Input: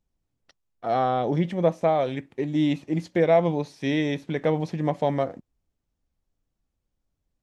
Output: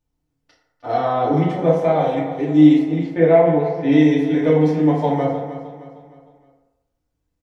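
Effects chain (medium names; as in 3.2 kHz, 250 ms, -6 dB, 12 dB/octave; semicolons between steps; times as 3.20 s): 2.83–3.92 s: low-pass 2.7 kHz 12 dB/octave; feedback delay 308 ms, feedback 42%, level -12 dB; FDN reverb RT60 0.97 s, low-frequency decay 0.7×, high-frequency decay 0.45×, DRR -7 dB; trim -3 dB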